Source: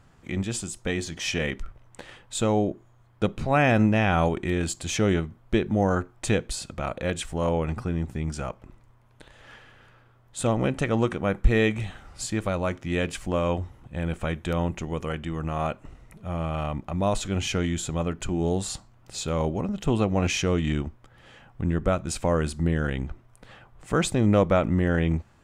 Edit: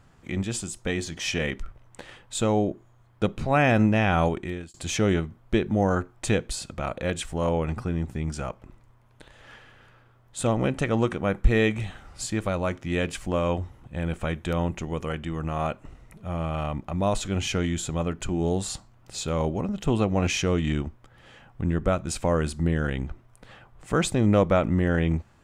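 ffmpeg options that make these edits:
ffmpeg -i in.wav -filter_complex "[0:a]asplit=2[link_01][link_02];[link_01]atrim=end=4.74,asetpts=PTS-STARTPTS,afade=type=out:start_time=4.28:duration=0.46[link_03];[link_02]atrim=start=4.74,asetpts=PTS-STARTPTS,afade=type=in:duration=0.004:curve=hsin[link_04];[link_03][link_04]concat=n=2:v=0:a=1" out.wav

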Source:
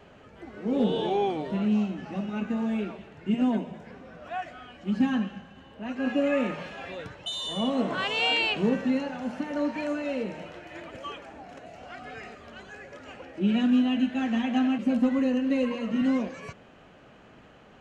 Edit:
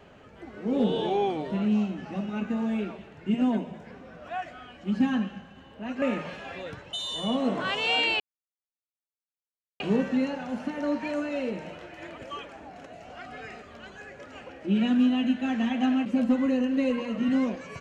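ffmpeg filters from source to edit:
ffmpeg -i in.wav -filter_complex "[0:a]asplit=3[link_01][link_02][link_03];[link_01]atrim=end=6.022[link_04];[link_02]atrim=start=6.348:end=8.53,asetpts=PTS-STARTPTS,afade=type=out:start_time=2.178:duration=0.004:curve=hsin,apad=pad_dur=1.6[link_05];[link_03]atrim=start=8.53,asetpts=PTS-STARTPTS,afade=type=in:duration=0.004:curve=hsin[link_06];[link_05][link_06]concat=n=2:v=0:a=1[link_07];[link_04][link_07]acrossfade=duration=0.004:curve1=hsin:curve2=hsin" out.wav

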